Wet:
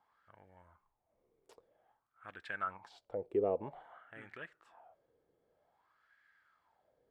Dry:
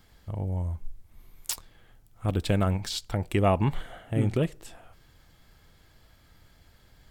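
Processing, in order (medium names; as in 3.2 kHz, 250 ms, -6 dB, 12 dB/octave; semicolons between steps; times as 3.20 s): wah-wah 0.52 Hz 430–1700 Hz, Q 6.2; trim +1.5 dB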